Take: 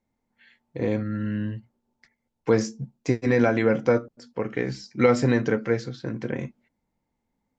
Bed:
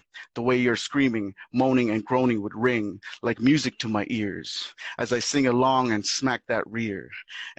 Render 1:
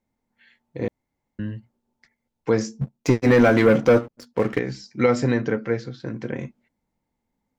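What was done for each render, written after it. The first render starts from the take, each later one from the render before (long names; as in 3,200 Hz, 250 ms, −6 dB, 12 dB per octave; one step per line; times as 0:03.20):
0:00.88–0:01.39: fill with room tone
0:02.81–0:04.59: leveller curve on the samples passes 2
0:05.34–0:06.00: high-frequency loss of the air 71 metres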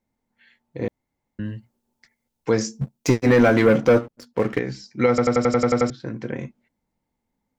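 0:01.45–0:03.23: high-shelf EQ 4,400 Hz +8.5 dB
0:05.09: stutter in place 0.09 s, 9 plays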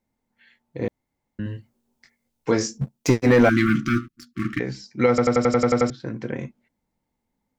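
0:01.44–0:02.78: double-tracking delay 21 ms −4 dB
0:03.49–0:04.60: linear-phase brick-wall band-stop 360–1,100 Hz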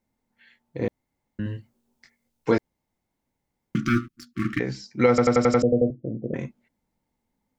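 0:02.58–0:03.75: fill with room tone
0:05.62–0:06.34: Butterworth low-pass 680 Hz 96 dB per octave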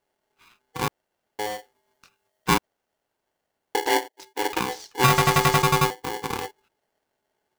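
ring modulator with a square carrier 630 Hz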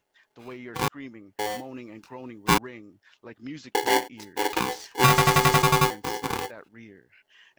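mix in bed −18.5 dB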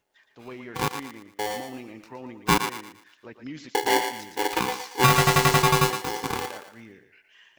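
feedback echo with a high-pass in the loop 115 ms, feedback 37%, high-pass 500 Hz, level −7 dB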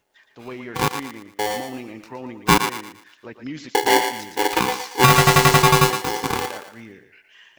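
level +5.5 dB
brickwall limiter −2 dBFS, peak gain reduction 2.5 dB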